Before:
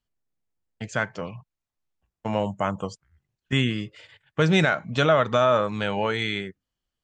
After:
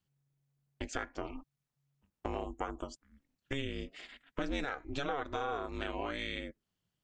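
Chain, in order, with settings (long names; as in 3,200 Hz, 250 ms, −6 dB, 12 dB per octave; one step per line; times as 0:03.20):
downward compressor 4 to 1, threshold −35 dBFS, peak gain reduction 17 dB
ring modulation 140 Hz
level +2 dB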